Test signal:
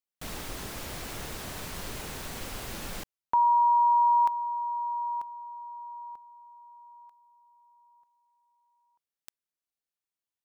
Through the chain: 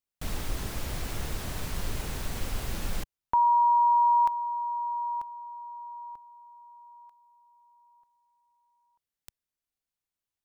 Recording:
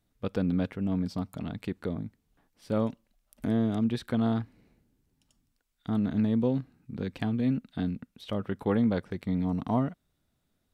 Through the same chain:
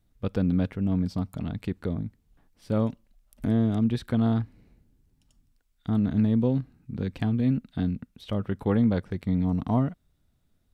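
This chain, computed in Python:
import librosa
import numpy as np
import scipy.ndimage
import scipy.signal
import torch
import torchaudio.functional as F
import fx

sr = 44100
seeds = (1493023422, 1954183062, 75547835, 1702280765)

y = fx.low_shelf(x, sr, hz=120.0, db=12.0)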